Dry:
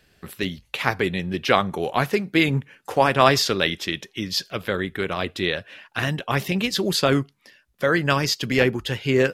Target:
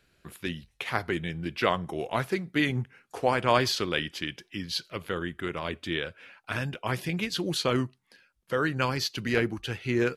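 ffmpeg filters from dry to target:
-af "asetrate=40517,aresample=44100,volume=-7dB"

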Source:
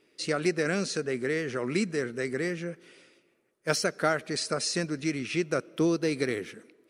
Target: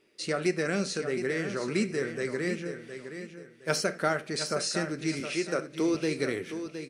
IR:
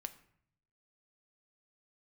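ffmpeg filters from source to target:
-filter_complex "[0:a]asettb=1/sr,asplit=3[a][b][c];[a]atrim=end=5.204[d];[b]atrim=start=5.2:end=5.95,asetpts=PTS-STARTPTS,afade=t=in:d=0.004:c=qsin,afade=t=out:st=0.746:d=0.004:c=qsin,highpass=240[e];[c]atrim=start=5.946[f];[d][e]acrossfade=d=0.004:c1=hsin:c2=qsin[g];[g][f]acrossfade=d=0.004:c1=qsin:c2=hsin,aecho=1:1:715|1430|2145:0.335|0.0938|0.0263[h];[1:a]atrim=start_sample=2205,afade=t=out:st=0.14:d=0.01,atrim=end_sample=6615[i];[h][i]afir=irnorm=-1:irlink=0,volume=2dB"

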